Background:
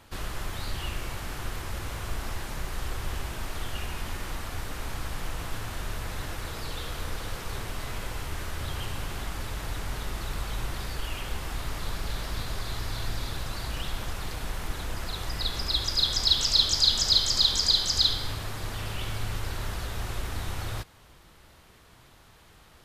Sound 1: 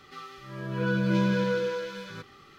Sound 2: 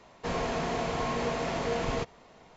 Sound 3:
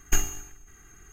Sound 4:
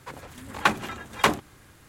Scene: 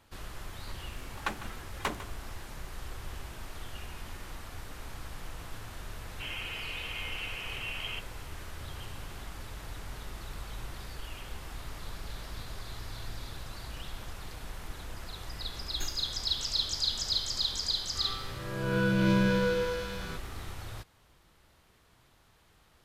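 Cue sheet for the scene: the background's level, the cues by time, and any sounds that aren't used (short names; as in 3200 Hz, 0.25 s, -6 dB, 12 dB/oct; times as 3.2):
background -8.5 dB
0.61 add 4 -13 dB + echo 0.151 s -14 dB
5.96 add 2 -9 dB + inverted band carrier 3200 Hz
15.68 add 3 -14 dB
17.95 add 1 -1.5 dB + spectral swells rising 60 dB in 1.09 s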